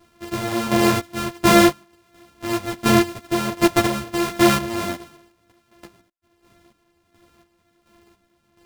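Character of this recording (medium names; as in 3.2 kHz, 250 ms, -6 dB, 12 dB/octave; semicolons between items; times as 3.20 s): a buzz of ramps at a fixed pitch in blocks of 128 samples; chopped level 1.4 Hz, depth 65%, duty 40%; a shimmering, thickened sound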